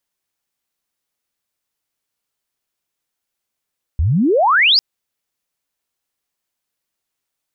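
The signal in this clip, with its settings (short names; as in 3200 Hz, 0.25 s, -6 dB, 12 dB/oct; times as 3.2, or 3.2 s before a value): chirp logarithmic 68 Hz -> 5200 Hz -12.5 dBFS -> -8.5 dBFS 0.80 s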